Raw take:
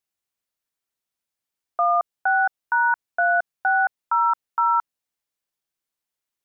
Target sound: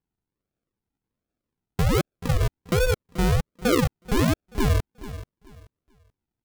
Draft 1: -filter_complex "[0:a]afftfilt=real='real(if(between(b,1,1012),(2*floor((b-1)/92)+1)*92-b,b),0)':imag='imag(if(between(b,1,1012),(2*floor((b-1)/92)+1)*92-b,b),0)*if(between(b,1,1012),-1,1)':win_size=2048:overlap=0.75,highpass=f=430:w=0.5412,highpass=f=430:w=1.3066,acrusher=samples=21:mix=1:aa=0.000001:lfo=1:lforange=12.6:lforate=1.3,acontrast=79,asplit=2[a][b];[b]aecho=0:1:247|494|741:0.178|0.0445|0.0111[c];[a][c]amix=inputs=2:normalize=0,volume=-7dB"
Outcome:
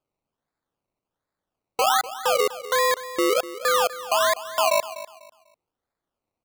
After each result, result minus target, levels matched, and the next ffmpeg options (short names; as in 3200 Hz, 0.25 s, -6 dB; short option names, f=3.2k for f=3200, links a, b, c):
decimation with a swept rate: distortion -38 dB; echo 0.186 s early
-filter_complex "[0:a]afftfilt=real='real(if(between(b,1,1012),(2*floor((b-1)/92)+1)*92-b,b),0)':imag='imag(if(between(b,1,1012),(2*floor((b-1)/92)+1)*92-b,b),0)*if(between(b,1,1012),-1,1)':win_size=2048:overlap=0.75,highpass=f=430:w=0.5412,highpass=f=430:w=1.3066,acrusher=samples=62:mix=1:aa=0.000001:lfo=1:lforange=37.2:lforate=1.3,acontrast=79,asplit=2[a][b];[b]aecho=0:1:247|494|741:0.178|0.0445|0.0111[c];[a][c]amix=inputs=2:normalize=0,volume=-7dB"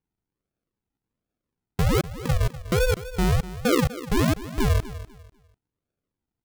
echo 0.186 s early
-filter_complex "[0:a]afftfilt=real='real(if(between(b,1,1012),(2*floor((b-1)/92)+1)*92-b,b),0)':imag='imag(if(between(b,1,1012),(2*floor((b-1)/92)+1)*92-b,b),0)*if(between(b,1,1012),-1,1)':win_size=2048:overlap=0.75,highpass=f=430:w=0.5412,highpass=f=430:w=1.3066,acrusher=samples=62:mix=1:aa=0.000001:lfo=1:lforange=37.2:lforate=1.3,acontrast=79,asplit=2[a][b];[b]aecho=0:1:433|866|1299:0.178|0.0445|0.0111[c];[a][c]amix=inputs=2:normalize=0,volume=-7dB"